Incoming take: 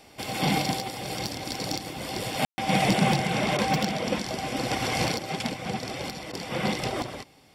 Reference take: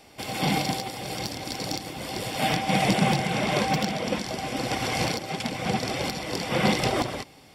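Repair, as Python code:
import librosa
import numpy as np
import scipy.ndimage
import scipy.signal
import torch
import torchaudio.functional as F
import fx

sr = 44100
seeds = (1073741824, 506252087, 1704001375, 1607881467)

y = fx.fix_declip(x, sr, threshold_db=-13.0)
y = fx.fix_ambience(y, sr, seeds[0], print_start_s=7.03, print_end_s=7.53, start_s=2.45, end_s=2.58)
y = fx.fix_interpolate(y, sr, at_s=(3.57, 6.32), length_ms=13.0)
y = fx.fix_level(y, sr, at_s=5.54, step_db=5.0)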